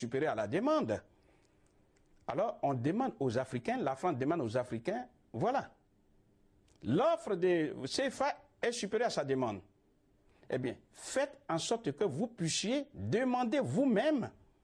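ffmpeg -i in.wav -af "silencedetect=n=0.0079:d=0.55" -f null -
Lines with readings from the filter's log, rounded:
silence_start: 0.99
silence_end: 2.29 | silence_duration: 1.29
silence_start: 5.66
silence_end: 6.83 | silence_duration: 1.17
silence_start: 9.58
silence_end: 10.50 | silence_duration: 0.92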